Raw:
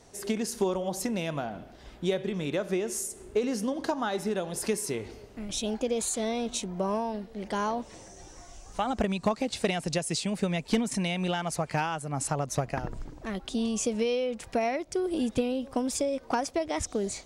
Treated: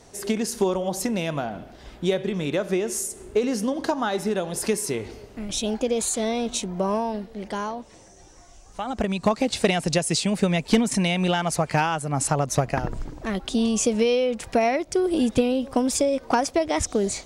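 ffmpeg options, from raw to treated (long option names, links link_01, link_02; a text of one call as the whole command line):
ffmpeg -i in.wav -af "volume=14dB,afade=type=out:start_time=7.18:duration=0.58:silence=0.446684,afade=type=in:start_time=8.79:duration=0.64:silence=0.354813" out.wav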